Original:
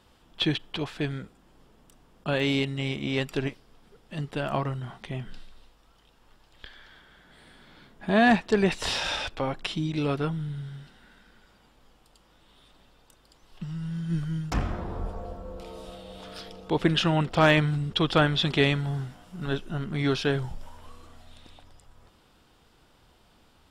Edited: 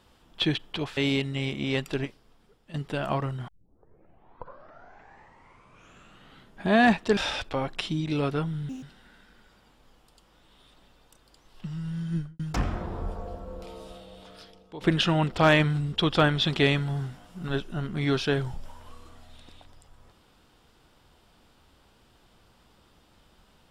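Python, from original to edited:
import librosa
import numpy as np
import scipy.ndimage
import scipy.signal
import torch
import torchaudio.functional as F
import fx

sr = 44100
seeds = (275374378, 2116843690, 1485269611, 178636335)

y = fx.studio_fade_out(x, sr, start_s=14.07, length_s=0.3)
y = fx.edit(y, sr, fx.cut(start_s=0.97, length_s=1.43),
    fx.fade_out_to(start_s=3.26, length_s=0.91, floor_db=-9.5),
    fx.tape_start(start_s=4.91, length_s=3.19),
    fx.cut(start_s=8.6, length_s=0.43),
    fx.speed_span(start_s=10.55, length_s=0.25, speed=1.86),
    fx.fade_out_to(start_s=15.58, length_s=1.2, floor_db=-16.5), tone=tone)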